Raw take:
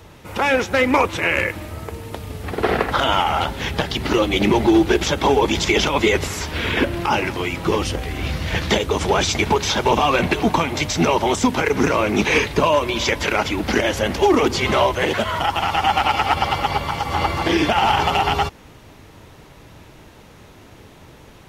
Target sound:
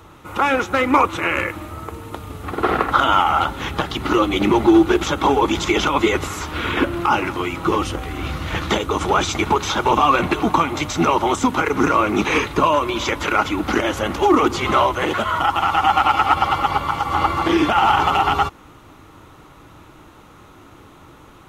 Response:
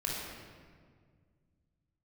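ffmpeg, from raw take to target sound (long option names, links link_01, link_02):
-af "superequalizer=6b=1.78:9b=1.58:10b=2.82:14b=0.631,volume=-2.5dB"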